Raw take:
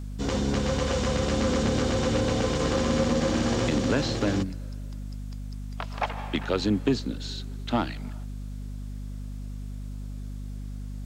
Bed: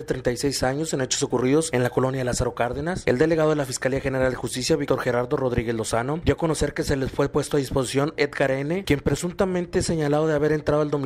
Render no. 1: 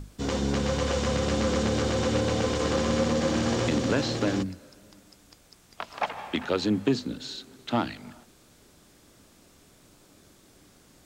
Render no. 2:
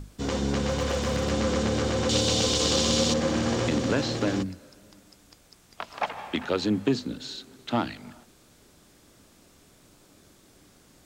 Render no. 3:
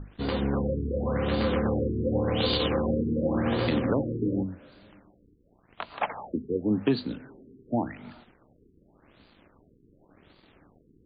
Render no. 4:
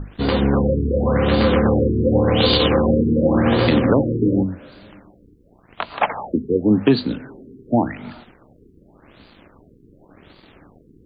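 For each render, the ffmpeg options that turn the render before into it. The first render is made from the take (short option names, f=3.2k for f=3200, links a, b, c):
-af "bandreject=f=50:t=h:w=6,bandreject=f=100:t=h:w=6,bandreject=f=150:t=h:w=6,bandreject=f=200:t=h:w=6,bandreject=f=250:t=h:w=6"
-filter_complex "[0:a]asettb=1/sr,asplit=3[a][b][c];[a]atrim=end=0.694[d];[b]atrim=start=0.69:end=1.31,asetpts=PTS-STARTPTS,afade=t=in:d=0.004:c=qsin,afade=t=out:st=0.616:d=0.004:c=qsin,aeval=exprs='0.1*(abs(mod(val(0)/0.1+3,4)-2)-1)':c=same[e];[c]atrim=start=1.306[f];[d][e]acrossfade=d=0.004:c1=hsin:c2=qsin[g];[g][f]acrossfade=d=0.004:c1=qsin:c2=hsin,asettb=1/sr,asplit=3[h][i][j];[h]atrim=end=2.094[k];[i]atrim=start=2.09:end=3.14,asetpts=PTS-STARTPTS,afade=t=in:d=0.004:c=qsin,afade=t=out:st=1.046:d=0.004:c=qsin,highshelf=f=2.6k:t=q:w=1.5:g=10[l];[j]atrim=start=3.136[m];[k][l]acrossfade=d=0.004:c1=hsin:c2=qsin[n];[n][m]acrossfade=d=0.004:c1=qsin:c2=hsin"
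-af "acrusher=bits=8:mix=0:aa=0.000001,afftfilt=real='re*lt(b*sr/1024,460*pow(4900/460,0.5+0.5*sin(2*PI*0.89*pts/sr)))':imag='im*lt(b*sr/1024,460*pow(4900/460,0.5+0.5*sin(2*PI*0.89*pts/sr)))':win_size=1024:overlap=0.75"
-af "volume=10dB,alimiter=limit=-2dB:level=0:latency=1"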